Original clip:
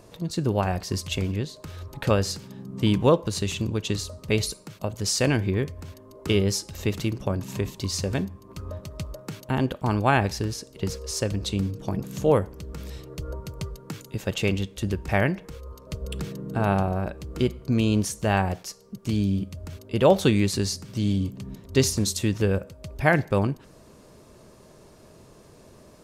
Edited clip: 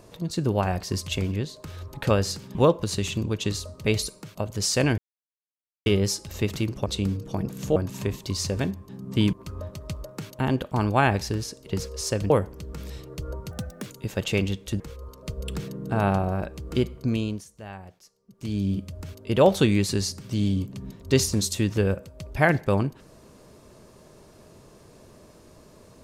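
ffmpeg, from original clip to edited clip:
-filter_complex "[0:a]asplit=14[s0][s1][s2][s3][s4][s5][s6][s7][s8][s9][s10][s11][s12][s13];[s0]atrim=end=2.552[s14];[s1]atrim=start=2.988:end=5.42,asetpts=PTS-STARTPTS,afade=t=out:st=2.428:d=0.004:c=hsin[s15];[s2]atrim=start=5.42:end=6.3,asetpts=PTS-STARTPTS,volume=0[s16];[s3]atrim=start=6.3:end=7.302,asetpts=PTS-STARTPTS,afade=t=in:d=0.004:c=hsin[s17];[s4]atrim=start=11.398:end=12.302[s18];[s5]atrim=start=7.298:end=8.432[s19];[s6]atrim=start=2.548:end=2.992[s20];[s7]atrim=start=8.428:end=11.402[s21];[s8]atrim=start=12.298:end=13.514[s22];[s9]atrim=start=13.51:end=13.96,asetpts=PTS-STARTPTS,asetrate=56889,aresample=44100[s23];[s10]atrim=start=13.956:end=14.902[s24];[s11]atrim=start=15.438:end=18.09,asetpts=PTS-STARTPTS,afade=t=out:st=2.182:d=0.47:silence=0.133352[s25];[s12]atrim=start=18.09:end=18.91,asetpts=PTS-STARTPTS,volume=0.133[s26];[s13]atrim=start=18.91,asetpts=PTS-STARTPTS,afade=t=in:d=0.47:silence=0.133352[s27];[s15][s16][s17]concat=n=3:v=0:a=1[s28];[s14][s28]acrossfade=d=0.004:c1=hsin:c2=hsin[s29];[s29][s18]acrossfade=d=0.004:c1=hsin:c2=hsin[s30];[s30][s19]acrossfade=d=0.004:c1=hsin:c2=hsin[s31];[s31][s20]acrossfade=d=0.004:c1=hsin:c2=hsin[s32];[s32][s21]acrossfade=d=0.004:c1=hsin:c2=hsin[s33];[s33][s22]acrossfade=d=0.004:c1=hsin:c2=hsin[s34];[s34][s23]acrossfade=d=0.004:c1=hsin:c2=hsin[s35];[s35][s24]acrossfade=d=0.004:c1=hsin:c2=hsin[s36];[s25][s26][s27]concat=n=3:v=0:a=1[s37];[s36][s37]acrossfade=d=0.004:c1=hsin:c2=hsin"

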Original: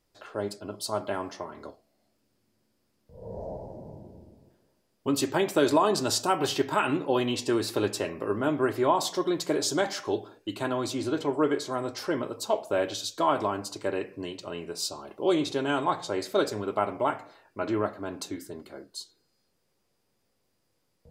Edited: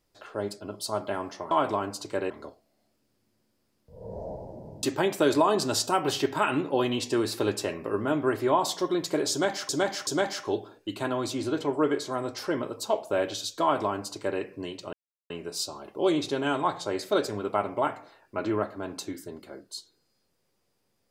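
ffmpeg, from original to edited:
-filter_complex "[0:a]asplit=7[s0][s1][s2][s3][s4][s5][s6];[s0]atrim=end=1.512[s7];[s1]atrim=start=13.218:end=14.012[s8];[s2]atrim=start=1.508:end=4.042[s9];[s3]atrim=start=5.188:end=10.052[s10];[s4]atrim=start=9.668:end=10.052[s11];[s5]atrim=start=9.668:end=14.53,asetpts=PTS-STARTPTS,afade=t=out:st=4.858:d=0.004:c=hsin,apad=pad_dur=0.37[s12];[s6]atrim=start=14.53,asetpts=PTS-STARTPTS,afade=t=in:d=0.004:c=hsin[s13];[s7][s8]acrossfade=d=0.004:c1=hsin:c2=hsin[s14];[s14][s9]acrossfade=d=0.004:c1=hsin:c2=hsin[s15];[s15][s10]acrossfade=d=0.004:c1=hsin:c2=hsin[s16];[s16][s11]acrossfade=d=0.004:c1=hsin:c2=hsin[s17];[s12][s13]concat=n=2:v=0:a=1[s18];[s17][s18]acrossfade=d=0.004:c1=hsin:c2=hsin"

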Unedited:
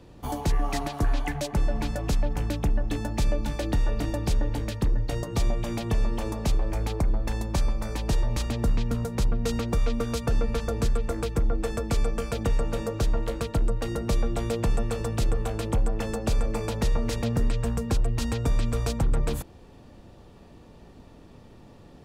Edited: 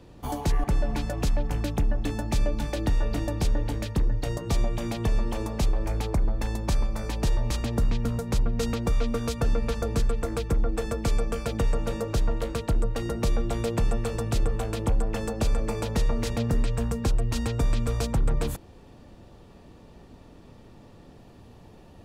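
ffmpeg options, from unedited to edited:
-filter_complex "[0:a]asplit=2[s0][s1];[s0]atrim=end=0.642[s2];[s1]atrim=start=1.498[s3];[s2][s3]acrossfade=d=0.004:c1=hsin:c2=hsin"

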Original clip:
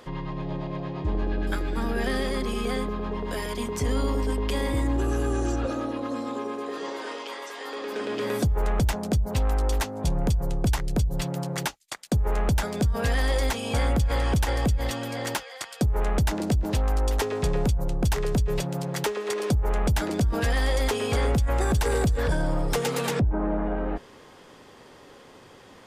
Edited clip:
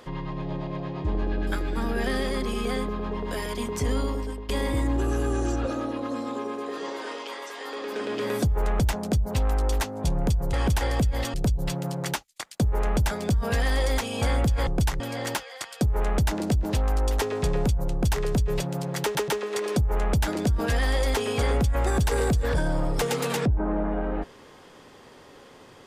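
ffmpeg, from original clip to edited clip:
-filter_complex "[0:a]asplit=8[s0][s1][s2][s3][s4][s5][s6][s7];[s0]atrim=end=4.49,asetpts=PTS-STARTPTS,afade=t=out:st=3.92:d=0.57:silence=0.211349[s8];[s1]atrim=start=4.49:end=10.532,asetpts=PTS-STARTPTS,afade=t=in:d=0.004:c=hsin:silence=0.211349[s9];[s2]atrim=start=14.188:end=15.002[s10];[s3]atrim=start=10.858:end=14.192[s11];[s4]atrim=start=10.528:end=10.862[s12];[s5]atrim=start=14.998:end=19.152[s13];[s6]atrim=start=19.018:end=19.152[s14];[s7]atrim=start=19.018[s15];[s8][s9]concat=n=2:v=0:a=1[s16];[s16][s10]acrossfade=d=0.004:c1=hsin:c2=hsin[s17];[s17][s11]acrossfade=d=0.004:c1=hsin:c2=hsin[s18];[s18][s12]acrossfade=d=0.004:c1=hsin:c2=hsin[s19];[s19][s13]acrossfade=d=0.004:c1=hsin:c2=hsin[s20];[s20][s14]acrossfade=d=0.004:c1=hsin:c2=hsin[s21];[s21][s15]acrossfade=d=0.004:c1=hsin:c2=hsin"

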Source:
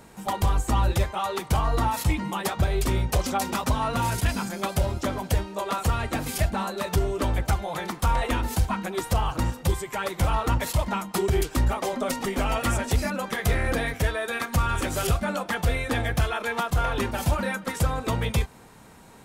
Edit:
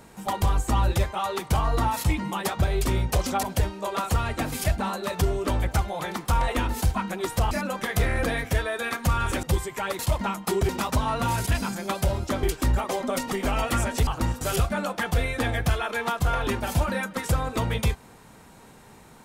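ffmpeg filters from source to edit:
-filter_complex "[0:a]asplit=9[s0][s1][s2][s3][s4][s5][s6][s7][s8];[s0]atrim=end=3.432[s9];[s1]atrim=start=5.168:end=9.252[s10];[s2]atrim=start=12.998:end=14.922[s11];[s3]atrim=start=9.588:end=10.152[s12];[s4]atrim=start=10.658:end=11.362[s13];[s5]atrim=start=3.428:end=5.172[s14];[s6]atrim=start=11.358:end=13.002[s15];[s7]atrim=start=9.248:end=9.592[s16];[s8]atrim=start=14.918[s17];[s9][s10]acrossfade=d=0.004:c1=hsin:c2=hsin[s18];[s18][s11]acrossfade=d=0.004:c1=hsin:c2=hsin[s19];[s19][s12]acrossfade=d=0.004:c1=hsin:c2=hsin[s20];[s20][s13]acrossfade=d=0.004:c1=hsin:c2=hsin[s21];[s21][s14]acrossfade=d=0.004:c1=hsin:c2=hsin[s22];[s22][s15]acrossfade=d=0.004:c1=hsin:c2=hsin[s23];[s23][s16]acrossfade=d=0.004:c1=hsin:c2=hsin[s24];[s24][s17]acrossfade=d=0.004:c1=hsin:c2=hsin"

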